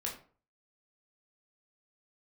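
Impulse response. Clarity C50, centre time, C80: 8.0 dB, 24 ms, 13.0 dB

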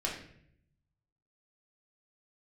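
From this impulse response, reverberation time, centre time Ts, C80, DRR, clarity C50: 0.65 s, 34 ms, 8.5 dB, -3.0 dB, 5.0 dB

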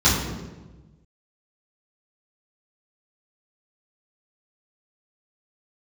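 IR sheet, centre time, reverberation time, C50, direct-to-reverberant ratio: 60 ms, 1.2 s, 2.5 dB, -11.0 dB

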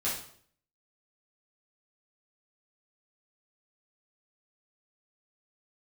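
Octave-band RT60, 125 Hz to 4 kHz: 0.65, 0.65, 0.60, 0.55, 0.50, 0.50 s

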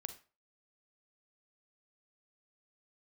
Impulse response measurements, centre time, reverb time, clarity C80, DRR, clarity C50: 8 ms, 0.35 s, 17.0 dB, 9.0 dB, 11.5 dB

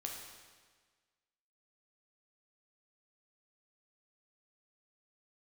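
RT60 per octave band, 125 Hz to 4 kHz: 1.5, 1.5, 1.5, 1.5, 1.5, 1.4 s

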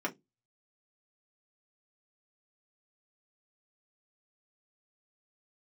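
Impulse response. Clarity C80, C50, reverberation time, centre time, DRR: 30.5 dB, 20.5 dB, 0.15 s, 9 ms, -1.5 dB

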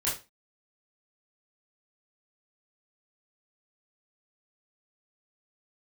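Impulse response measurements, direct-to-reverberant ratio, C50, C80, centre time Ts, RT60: -8.5 dB, 7.5 dB, 14.0 dB, 33 ms, 0.30 s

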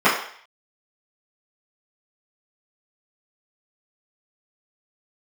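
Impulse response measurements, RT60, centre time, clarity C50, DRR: 0.55 s, 38 ms, 5.0 dB, -14.0 dB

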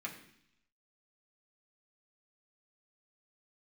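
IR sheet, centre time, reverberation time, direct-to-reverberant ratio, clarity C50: 19 ms, 0.70 s, -3.0 dB, 9.0 dB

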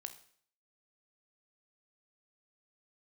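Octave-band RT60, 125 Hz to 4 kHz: 0.60, 0.60, 0.55, 0.55, 0.55, 0.55 s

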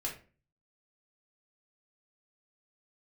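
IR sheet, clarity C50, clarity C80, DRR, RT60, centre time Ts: 8.5 dB, 13.5 dB, -3.0 dB, 0.35 s, 23 ms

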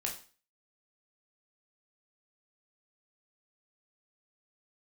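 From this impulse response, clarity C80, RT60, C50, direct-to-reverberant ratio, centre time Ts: 13.5 dB, 0.40 s, 9.0 dB, -0.5 dB, 21 ms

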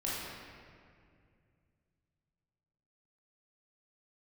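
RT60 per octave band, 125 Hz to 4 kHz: 3.6, 2.9, 2.5, 2.0, 2.0, 1.4 s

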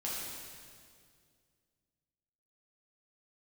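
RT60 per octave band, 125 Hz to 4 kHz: 2.7, 2.5, 2.3, 1.9, 1.9, 1.9 s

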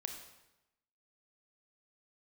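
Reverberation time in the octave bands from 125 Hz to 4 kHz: 1.0, 1.0, 0.95, 0.95, 0.90, 0.80 s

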